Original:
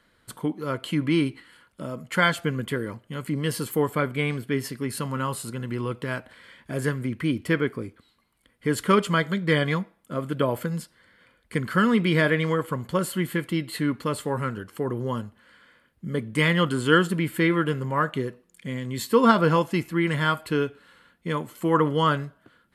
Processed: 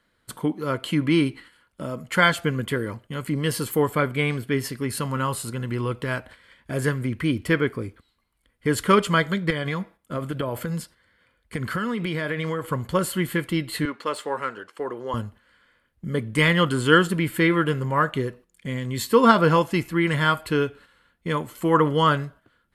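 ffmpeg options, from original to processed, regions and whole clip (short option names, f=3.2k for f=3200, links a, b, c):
-filter_complex "[0:a]asettb=1/sr,asplit=3[a][b][c];[a]atrim=end=9.504[d];[b]atrim=start=9.5:end=12.66,asetpts=PTS-STARTPTS,afade=t=in:d=0.004:c=qsin,afade=t=out:st=3.156:d=0.004:c=qsin,acompressor=threshold=-24dB:ratio=10:attack=3.2:release=140:knee=1:detection=peak,highpass=41[e];[c]atrim=start=12.656[f];[d][e]acrossfade=d=0.004:c1=hsin:c2=qsin[g];[g][f]acrossfade=d=0.004:c1=qsin:c2=hsin,asettb=1/sr,asplit=3[h][i][j];[h]atrim=end=13.854[k];[i]atrim=start=13.85:end=15.14,asetpts=PTS-STARTPTS,afade=t=in:d=0.004:c=qsin,afade=t=out:st=1.286:d=0.004:c=qsin,highpass=430,adynamicsmooth=sensitivity=5:basefreq=6.9k[l];[j]atrim=start=15.136[m];[k][l]acrossfade=d=0.004:c1=hsin:c2=qsin[n];[n][m]acrossfade=d=0.004:c1=qsin:c2=hsin,agate=range=-8dB:threshold=-47dB:ratio=16:detection=peak,asubboost=boost=3:cutoff=88,volume=3dB"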